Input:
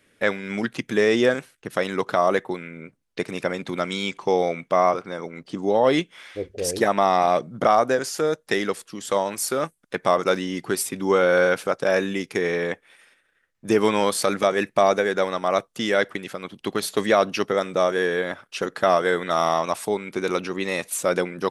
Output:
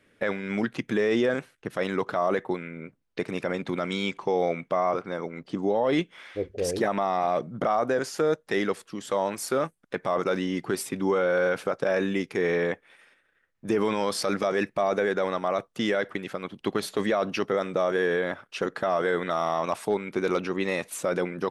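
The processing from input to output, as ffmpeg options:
-filter_complex "[0:a]asettb=1/sr,asplit=3[s0][s1][s2];[s0]atrim=end=13.894[s3];[s1]atrim=start=13.89:end=14.7,asetpts=PTS-STARTPTS,afade=t=in:d=0.004:c=qsin,afade=t=out:st=0.806:d=0.004:c=qsin,equalizer=f=5200:t=o:w=0.31:g=9[s4];[s2]atrim=start=14.696[s5];[s3][s4]acrossfade=d=0.004:c1=hsin:c2=qsin[s6];[s6][s5]acrossfade=d=0.004:c1=qsin:c2=hsin,asettb=1/sr,asplit=3[s7][s8][s9];[s7]atrim=end=19.714[s10];[s8]atrim=start=19.71:end=20.76,asetpts=PTS-STARTPTS,afade=t=in:d=0.004:c=qsin,afade=t=out:st=1.046:d=0.004:c=qsin,asoftclip=type=hard:threshold=0.211[s11];[s9]atrim=start=20.756[s12];[s10][s11]acrossfade=d=0.004:c1=hsin:c2=qsin[s13];[s13][s12]acrossfade=d=0.004:c1=qsin:c2=hsin,highshelf=f=4000:g=-10,alimiter=limit=0.178:level=0:latency=1:release=22"

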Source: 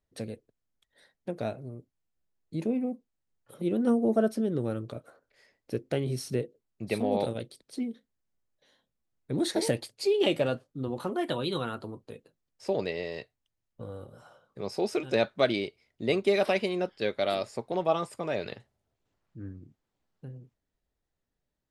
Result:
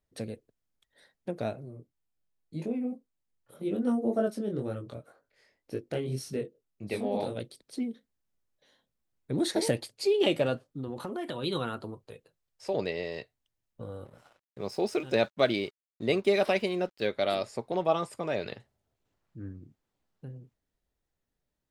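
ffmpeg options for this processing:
-filter_complex "[0:a]asplit=3[s0][s1][s2];[s0]afade=t=out:st=1.64:d=0.02[s3];[s1]flanger=delay=19.5:depth=5.2:speed=1.9,afade=t=in:st=1.64:d=0.02,afade=t=out:st=7.36:d=0.02[s4];[s2]afade=t=in:st=7.36:d=0.02[s5];[s3][s4][s5]amix=inputs=3:normalize=0,asplit=3[s6][s7][s8];[s6]afade=t=out:st=10.62:d=0.02[s9];[s7]acompressor=threshold=0.0282:ratio=6:attack=3.2:release=140:knee=1:detection=peak,afade=t=in:st=10.62:d=0.02,afade=t=out:st=11.42:d=0.02[s10];[s8]afade=t=in:st=11.42:d=0.02[s11];[s9][s10][s11]amix=inputs=3:normalize=0,asettb=1/sr,asplit=3[s12][s13][s14];[s12]atrim=end=11.944[s15];[s13]atrim=start=11.94:end=12.74,asetpts=PTS-STARTPTS,afade=t=in:d=0.004:c=qsin,afade=t=out:st=0.796:d=0.004:c=qsin,equalizer=f=250:w=1.4:g=-10[s16];[s14]atrim=start=12.736[s17];[s15][s16]acrossfade=d=0.004:c1=hsin:c2=qsin[s18];[s18][s17]acrossfade=d=0.004:c1=qsin:c2=hsin,asettb=1/sr,asplit=3[s19][s20][s21];[s19]atrim=end=14.054[s22];[s20]atrim=start=14.05:end=17.07,asetpts=PTS-STARTPTS,afade=t=in:d=0.004:c=qsin,afade=t=out:st=3.016:d=0.004:c=qsin,aeval=exprs='sgn(val(0))*max(abs(val(0))-0.00141,0)':c=same[s23];[s21]atrim=start=17.066[s24];[s22][s23]acrossfade=d=0.004:c1=hsin:c2=qsin[s25];[s25][s24]acrossfade=d=0.004:c1=qsin:c2=hsin"

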